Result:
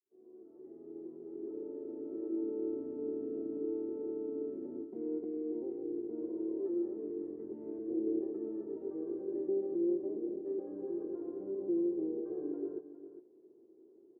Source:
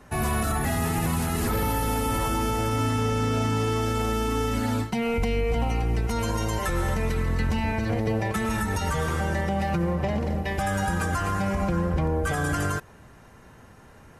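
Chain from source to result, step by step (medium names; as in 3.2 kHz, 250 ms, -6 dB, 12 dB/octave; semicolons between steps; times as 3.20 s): fade-in on the opening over 2.73 s; harmony voices -12 st -8 dB, -7 st -5 dB; Butterworth band-pass 360 Hz, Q 4; on a send: delay 407 ms -12.5 dB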